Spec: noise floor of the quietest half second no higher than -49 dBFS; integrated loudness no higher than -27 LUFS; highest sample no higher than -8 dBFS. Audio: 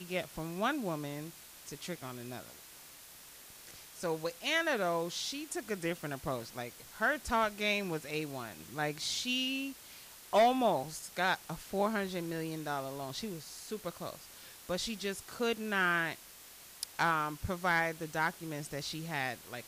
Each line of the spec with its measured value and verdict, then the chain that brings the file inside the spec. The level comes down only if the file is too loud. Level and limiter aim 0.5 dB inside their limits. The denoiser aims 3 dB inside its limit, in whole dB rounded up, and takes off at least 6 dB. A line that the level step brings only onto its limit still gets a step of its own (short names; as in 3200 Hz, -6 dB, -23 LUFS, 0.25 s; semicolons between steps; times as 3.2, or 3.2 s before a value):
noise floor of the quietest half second -54 dBFS: OK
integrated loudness -34.5 LUFS: OK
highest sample -19.0 dBFS: OK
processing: none